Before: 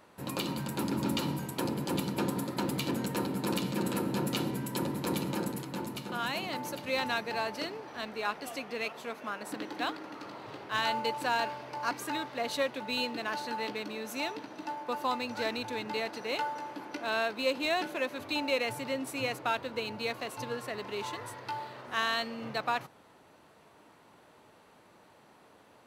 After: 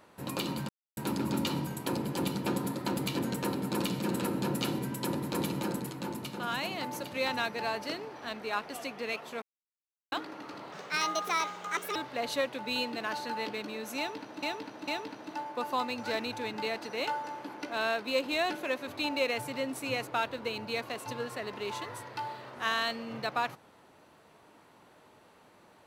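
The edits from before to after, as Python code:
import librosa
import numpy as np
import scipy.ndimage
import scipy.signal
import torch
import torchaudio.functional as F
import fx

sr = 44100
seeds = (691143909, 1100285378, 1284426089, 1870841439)

y = fx.edit(x, sr, fx.insert_silence(at_s=0.69, length_s=0.28),
    fx.silence(start_s=9.14, length_s=0.7),
    fx.speed_span(start_s=10.44, length_s=1.73, speed=1.4),
    fx.repeat(start_s=14.19, length_s=0.45, count=3), tone=tone)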